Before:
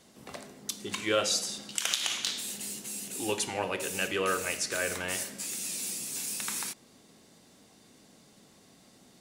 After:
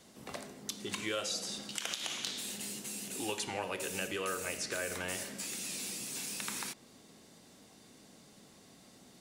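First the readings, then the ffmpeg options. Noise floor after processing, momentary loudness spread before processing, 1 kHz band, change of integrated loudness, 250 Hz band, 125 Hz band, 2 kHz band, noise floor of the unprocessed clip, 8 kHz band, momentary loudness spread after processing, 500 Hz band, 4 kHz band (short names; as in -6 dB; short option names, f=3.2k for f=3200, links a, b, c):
-59 dBFS, 9 LU, -6.0 dB, -6.0 dB, -3.5 dB, -3.5 dB, -5.5 dB, -59 dBFS, -6.0 dB, 21 LU, -6.5 dB, -5.5 dB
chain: -filter_complex "[0:a]acrossover=split=730|5000[a][b][c];[a]acompressor=threshold=-39dB:ratio=4[d];[b]acompressor=threshold=-38dB:ratio=4[e];[c]acompressor=threshold=-42dB:ratio=4[f];[d][e][f]amix=inputs=3:normalize=0"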